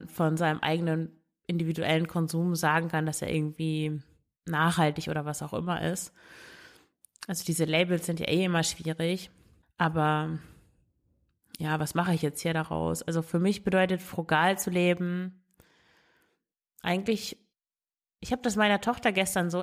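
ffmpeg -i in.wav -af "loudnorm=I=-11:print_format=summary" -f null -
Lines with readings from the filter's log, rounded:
Input Integrated:    -28.4 LUFS
Input True Peak:     -11.4 dBTP
Input LRA:             3.2 LU
Input Threshold:     -39.3 LUFS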